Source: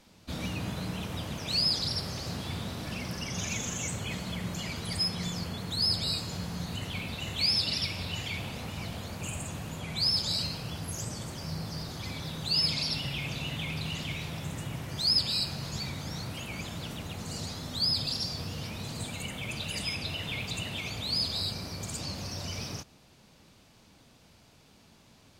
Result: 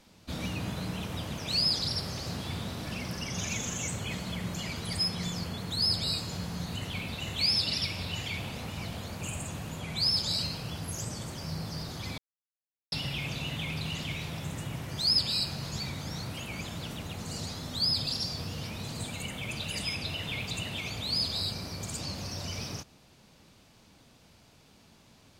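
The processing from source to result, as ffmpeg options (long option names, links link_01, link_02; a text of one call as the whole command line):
ffmpeg -i in.wav -filter_complex "[0:a]asplit=3[link_01][link_02][link_03];[link_01]atrim=end=12.18,asetpts=PTS-STARTPTS,afade=type=out:start_time=12.176:duration=0.004:curve=hsin[link_04];[link_02]atrim=start=12.18:end=12.92,asetpts=PTS-STARTPTS,volume=0[link_05];[link_03]atrim=start=12.92,asetpts=PTS-STARTPTS,afade=type=in:duration=0.004:curve=hsin[link_06];[link_04][link_05][link_06]concat=n=3:v=0:a=1" out.wav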